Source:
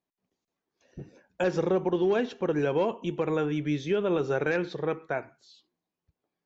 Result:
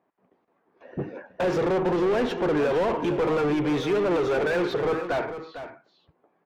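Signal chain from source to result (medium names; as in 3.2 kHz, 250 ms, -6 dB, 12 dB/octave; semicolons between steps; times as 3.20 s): level-controlled noise filter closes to 1.7 kHz, open at -24.5 dBFS; overdrive pedal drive 31 dB, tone 1 kHz, clips at -16.5 dBFS; delay 452 ms -11 dB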